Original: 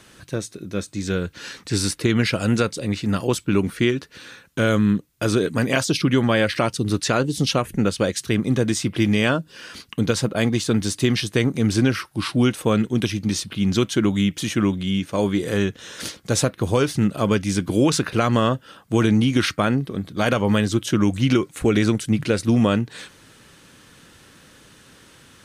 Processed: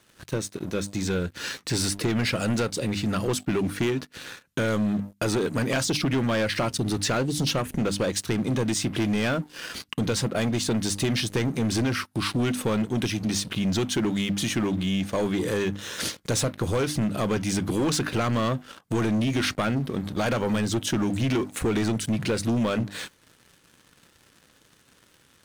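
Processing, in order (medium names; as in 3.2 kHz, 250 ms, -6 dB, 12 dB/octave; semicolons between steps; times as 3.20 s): hum notches 50/100/150/200/250/300 Hz; waveshaping leveller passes 3; compression 2:1, threshold -20 dBFS, peak gain reduction 6.5 dB; trim -7 dB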